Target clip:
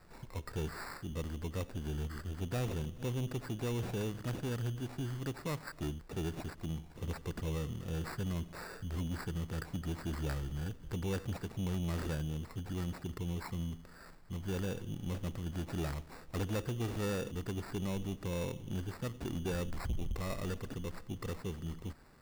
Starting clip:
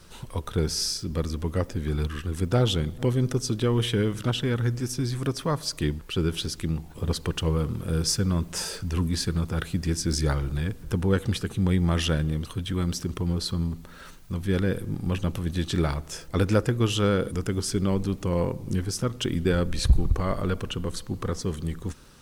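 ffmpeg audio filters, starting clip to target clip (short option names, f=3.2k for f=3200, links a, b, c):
-filter_complex "[0:a]acrossover=split=4400[a][b];[b]acompressor=threshold=-46dB:ratio=4:attack=1:release=60[c];[a][c]amix=inputs=2:normalize=0,acrusher=samples=14:mix=1:aa=0.000001,asoftclip=type=tanh:threshold=-21.5dB,volume=-9dB"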